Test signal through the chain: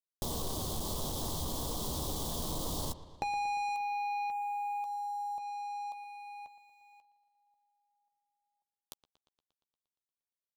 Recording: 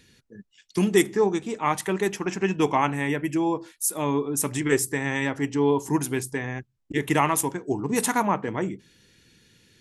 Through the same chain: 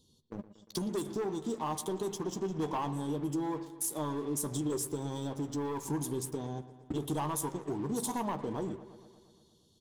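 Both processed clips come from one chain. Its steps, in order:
elliptic band-stop filter 1,100–3,300 Hz
leveller curve on the samples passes 3
in parallel at −0.5 dB: brickwall limiter −17.5 dBFS
on the sum: downward compressor 4 to 1, threshold −27 dBFS
double-tracking delay 13 ms −11 dB
delay with a low-pass on its return 117 ms, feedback 66%, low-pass 3,500 Hz, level −15 dB
level −8.5 dB

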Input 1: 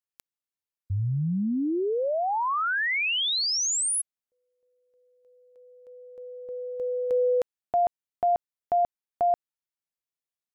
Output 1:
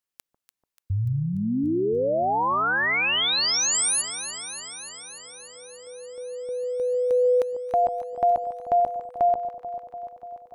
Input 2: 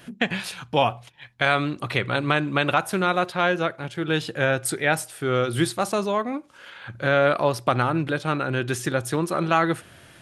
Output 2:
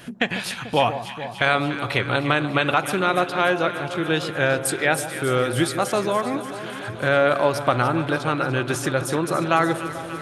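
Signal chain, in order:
in parallel at −2 dB: downward compressor, threshold −32 dBFS
on the sum: delay that swaps between a low-pass and a high-pass 146 ms, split 1,000 Hz, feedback 85%, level −10.5 dB
dynamic equaliser 180 Hz, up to −4 dB, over −38 dBFS, Q 2.4

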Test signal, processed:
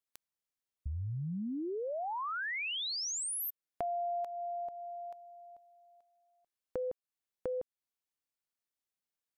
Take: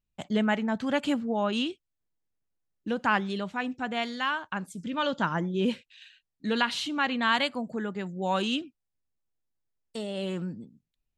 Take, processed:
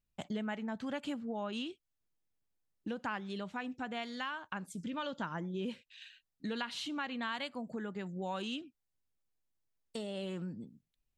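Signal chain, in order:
downward compressor 3 to 1, threshold −37 dBFS
level −1.5 dB

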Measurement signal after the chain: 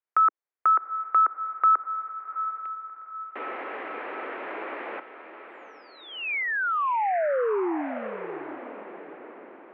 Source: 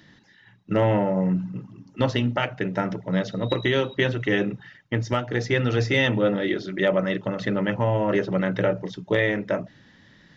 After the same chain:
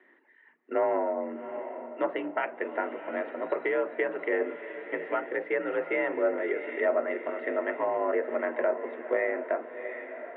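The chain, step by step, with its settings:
single-sideband voice off tune +53 Hz 280–2,300 Hz
feedback delay with all-pass diffusion 726 ms, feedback 47%, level −10.5 dB
treble cut that deepens with the level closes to 1,800 Hz, closed at −19 dBFS
level −4 dB

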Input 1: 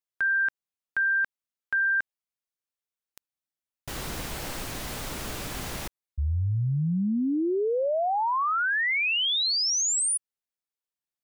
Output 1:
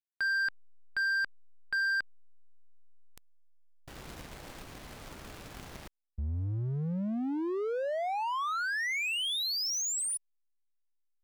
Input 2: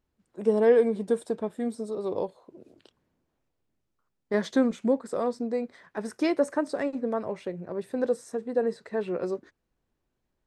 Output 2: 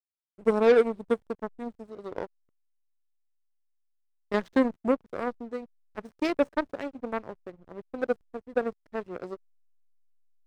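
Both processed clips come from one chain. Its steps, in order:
harmonic generator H 2 −38 dB, 7 −19 dB, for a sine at −10 dBFS
slack as between gear wheels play −44 dBFS

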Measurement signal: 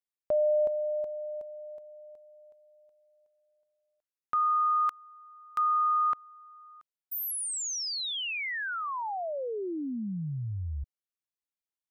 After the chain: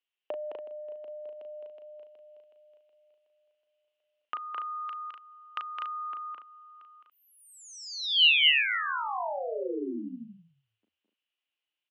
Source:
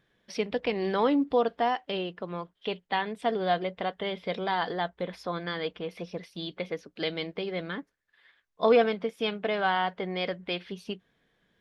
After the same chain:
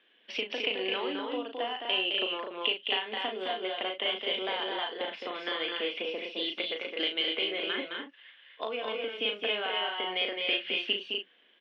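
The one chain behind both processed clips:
Butterworth high-pass 240 Hz 48 dB per octave
downward compressor 16 to 1, threshold −34 dBFS
low-pass with resonance 2,900 Hz, resonance Q 7.7
double-tracking delay 37 ms −6.5 dB
loudspeakers that aren't time-aligned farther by 73 metres −5 dB, 85 metres −5 dB

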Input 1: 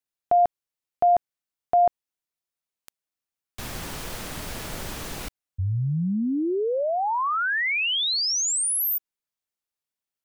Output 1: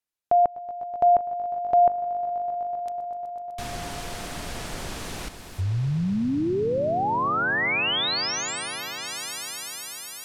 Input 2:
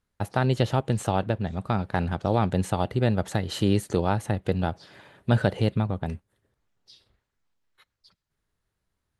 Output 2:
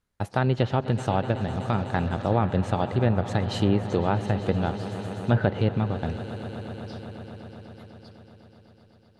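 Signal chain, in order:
echo that builds up and dies away 125 ms, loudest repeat 5, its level −17 dB
treble cut that deepens with the level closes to 2,400 Hz, closed at −17 dBFS

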